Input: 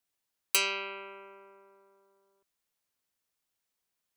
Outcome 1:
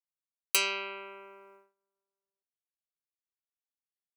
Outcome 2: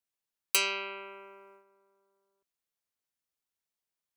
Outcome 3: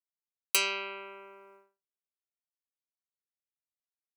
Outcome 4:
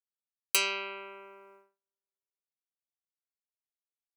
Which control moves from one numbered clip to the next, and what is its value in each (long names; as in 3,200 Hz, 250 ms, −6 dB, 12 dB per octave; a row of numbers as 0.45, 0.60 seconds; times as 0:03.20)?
noise gate, range: −25, −7, −51, −38 decibels